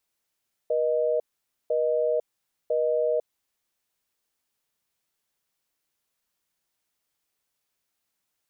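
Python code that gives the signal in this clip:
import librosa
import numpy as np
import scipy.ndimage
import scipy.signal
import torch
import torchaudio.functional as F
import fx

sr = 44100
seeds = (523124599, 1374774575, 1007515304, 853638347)

y = fx.call_progress(sr, length_s=2.69, kind='busy tone', level_db=-24.0)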